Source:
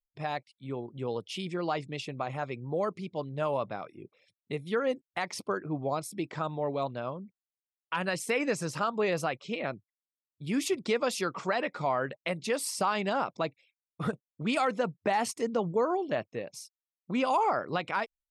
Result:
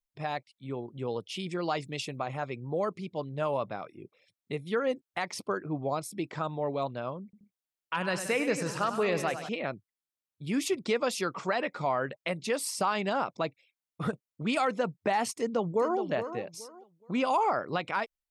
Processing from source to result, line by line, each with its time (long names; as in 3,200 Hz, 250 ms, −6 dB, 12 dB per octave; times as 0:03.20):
0:01.51–0:02.17: high-shelf EQ 5,300 Hz +10.5 dB
0:07.23–0:09.49: multi-tap delay 101/177/202/746 ms −10/−13/−17/−15.5 dB
0:15.34–0:15.99: delay throw 420 ms, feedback 25%, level −9.5 dB